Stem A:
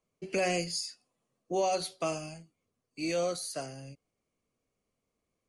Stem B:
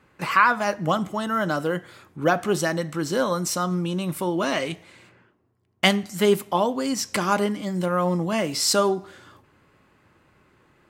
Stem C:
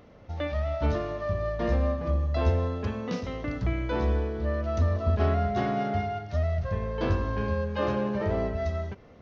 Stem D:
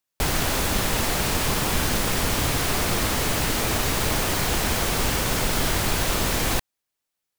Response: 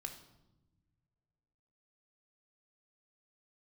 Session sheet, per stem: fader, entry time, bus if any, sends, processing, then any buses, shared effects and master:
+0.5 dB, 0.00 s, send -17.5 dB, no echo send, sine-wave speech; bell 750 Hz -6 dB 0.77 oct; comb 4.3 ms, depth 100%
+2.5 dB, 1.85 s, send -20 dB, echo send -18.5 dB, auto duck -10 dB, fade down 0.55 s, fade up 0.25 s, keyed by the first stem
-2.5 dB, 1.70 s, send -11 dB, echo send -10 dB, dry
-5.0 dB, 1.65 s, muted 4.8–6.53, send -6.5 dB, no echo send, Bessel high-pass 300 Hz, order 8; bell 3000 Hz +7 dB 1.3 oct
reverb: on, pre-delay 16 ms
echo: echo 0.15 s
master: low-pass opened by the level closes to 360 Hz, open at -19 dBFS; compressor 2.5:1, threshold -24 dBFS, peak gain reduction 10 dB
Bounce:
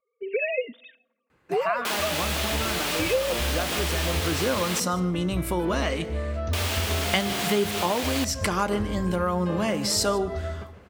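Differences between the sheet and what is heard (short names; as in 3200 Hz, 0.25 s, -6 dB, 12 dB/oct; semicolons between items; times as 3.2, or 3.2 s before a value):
stem A +0.5 dB -> +8.5 dB; stem B: entry 1.85 s -> 1.30 s; master: missing low-pass opened by the level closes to 360 Hz, open at -19 dBFS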